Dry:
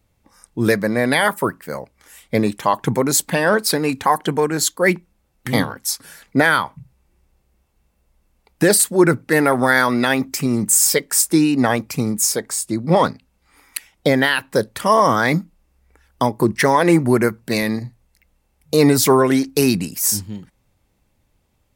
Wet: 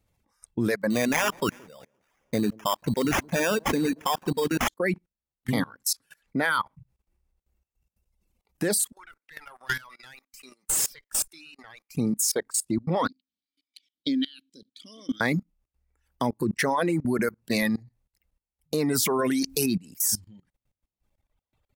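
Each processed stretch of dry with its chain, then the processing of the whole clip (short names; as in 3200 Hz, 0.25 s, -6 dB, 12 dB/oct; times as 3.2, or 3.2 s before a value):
0.9–4.68 notch 810 Hz, Q 19 + sample-rate reducer 4200 Hz + echo with dull and thin repeats by turns 0.171 s, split 980 Hz, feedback 53%, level -12 dB
8.92–11.95 HPF 1200 Hz + tube stage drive 18 dB, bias 0.65
13.08–15.21 vowel filter i + resonant high shelf 2900 Hz +12 dB, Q 3
19.19–19.66 high shelf 4100 Hz +9.5 dB + fast leveller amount 70%
whole clip: reverb removal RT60 1.7 s; dynamic EQ 240 Hz, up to +4 dB, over -32 dBFS, Q 1.6; level quantiser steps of 24 dB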